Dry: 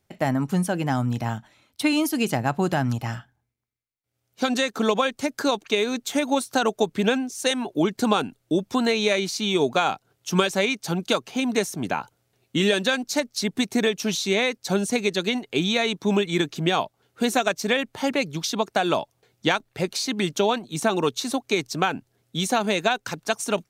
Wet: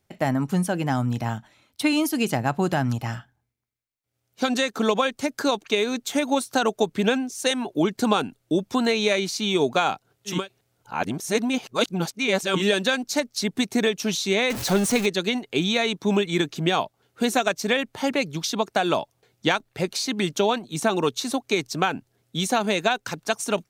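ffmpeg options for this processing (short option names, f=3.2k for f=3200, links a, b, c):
-filter_complex "[0:a]asettb=1/sr,asplit=3[a][b][c];[a]atrim=end=14.504[d];[b]atrim=start=14.5:end=15.06,asetpts=PTS-STARTPTS,afade=t=in:d=0.004:c=qsin,afade=t=out:st=0.556:d=0.004:c=qsin,aeval=exprs='val(0)+0.5*0.0562*sgn(val(0))':c=same[e];[c]atrim=start=15.056[f];[d][e]acrossfade=d=0.004:c1=hsin:c2=qsin[g];[g][f]acrossfade=d=0.004:c1=qsin:c2=hsin,asplit=3[h][i][j];[h]atrim=end=10.49,asetpts=PTS-STARTPTS[k];[i]atrim=start=10.25:end=12.69,asetpts=PTS-STARTPTS,areverse[l];[j]atrim=start=12.45,asetpts=PTS-STARTPTS[m];[k][l]acrossfade=d=0.24:c1=tri:c2=tri[n];[n][m]acrossfade=d=0.24:c1=tri:c2=tri"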